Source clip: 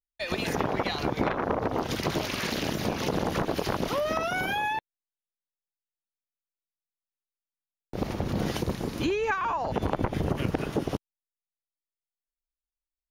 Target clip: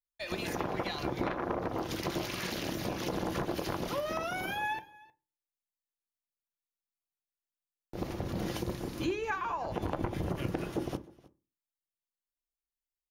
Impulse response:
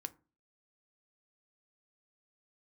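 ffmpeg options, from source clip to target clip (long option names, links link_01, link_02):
-filter_complex "[0:a]highshelf=frequency=8500:gain=5,aecho=1:1:311:0.075[link_01];[1:a]atrim=start_sample=2205,asetrate=48510,aresample=44100[link_02];[link_01][link_02]afir=irnorm=-1:irlink=0,volume=-2.5dB"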